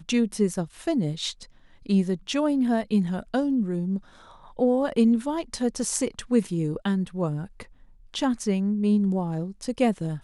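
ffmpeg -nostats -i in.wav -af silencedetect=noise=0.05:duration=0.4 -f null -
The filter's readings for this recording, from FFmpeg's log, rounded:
silence_start: 1.30
silence_end: 1.89 | silence_duration: 0.59
silence_start: 3.97
silence_end: 4.59 | silence_duration: 0.62
silence_start: 7.60
silence_end: 8.14 | silence_duration: 0.54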